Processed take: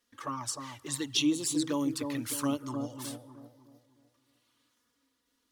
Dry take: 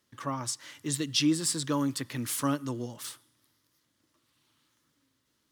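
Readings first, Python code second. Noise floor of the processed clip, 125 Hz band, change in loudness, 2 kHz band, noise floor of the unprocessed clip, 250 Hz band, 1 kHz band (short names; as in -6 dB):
-78 dBFS, -6.0 dB, -2.0 dB, -2.0 dB, -75 dBFS, -0.5 dB, -2.5 dB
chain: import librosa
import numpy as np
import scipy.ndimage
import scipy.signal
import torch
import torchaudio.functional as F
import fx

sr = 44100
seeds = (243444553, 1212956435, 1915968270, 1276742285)

p1 = fx.peak_eq(x, sr, hz=160.0, db=-11.0, octaves=0.8)
p2 = fx.env_flanger(p1, sr, rest_ms=4.2, full_db=-26.0)
p3 = p2 + fx.echo_bbd(p2, sr, ms=305, stages=2048, feedback_pct=39, wet_db=-5.0, dry=0)
y = p3 * 10.0 ** (1.0 / 20.0)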